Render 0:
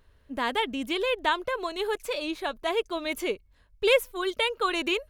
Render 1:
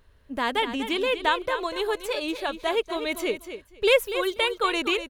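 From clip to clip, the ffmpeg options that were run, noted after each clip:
-af "aecho=1:1:243|486:0.299|0.0537,volume=1.26"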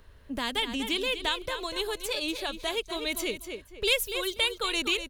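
-filter_complex "[0:a]acrossover=split=180|3000[s0][s1][s2];[s1]acompressor=threshold=0.00708:ratio=2.5[s3];[s0][s3][s2]amix=inputs=3:normalize=0,volume=1.68"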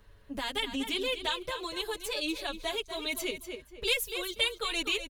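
-filter_complex "[0:a]asplit=2[s0][s1];[s1]adelay=6.6,afreqshift=-0.45[s2];[s0][s2]amix=inputs=2:normalize=1"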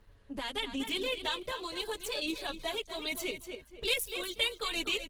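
-af "volume=0.794" -ar 48000 -c:a libopus -b:a 16k

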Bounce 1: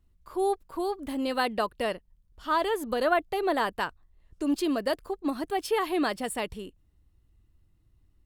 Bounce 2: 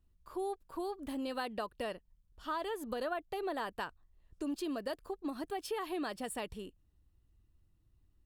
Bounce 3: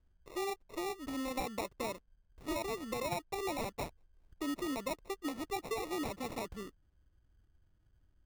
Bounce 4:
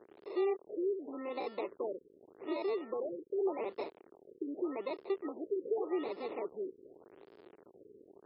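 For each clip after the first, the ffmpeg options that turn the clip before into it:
-af "bandreject=f=2100:w=15,acompressor=threshold=0.0316:ratio=3,volume=0.531"
-af "acrusher=samples=28:mix=1:aa=0.000001"
-af "aeval=exprs='val(0)+0.5*0.00891*sgn(val(0))':c=same,highpass=f=390:t=q:w=4.1,afftfilt=real='re*lt(b*sr/1024,510*pow(5400/510,0.5+0.5*sin(2*PI*0.85*pts/sr)))':imag='im*lt(b*sr/1024,510*pow(5400/510,0.5+0.5*sin(2*PI*0.85*pts/sr)))':win_size=1024:overlap=0.75,volume=0.473"

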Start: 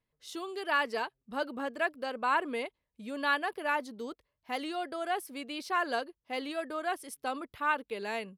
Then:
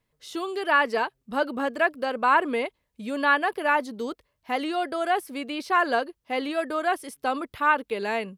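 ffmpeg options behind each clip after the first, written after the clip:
-filter_complex "[0:a]acrossover=split=2700[s0][s1];[s1]acompressor=threshold=0.00398:ratio=4:attack=1:release=60[s2];[s0][s2]amix=inputs=2:normalize=0,volume=2.66"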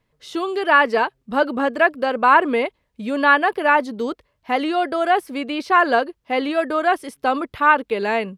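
-af "highshelf=f=6100:g=-10.5,volume=2.24"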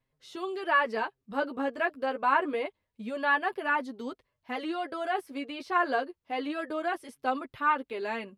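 -af "flanger=delay=7.5:depth=3.8:regen=6:speed=0.26:shape=sinusoidal,volume=0.376"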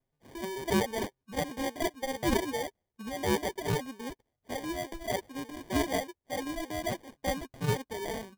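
-af "acrusher=samples=33:mix=1:aa=0.000001,volume=0.75"

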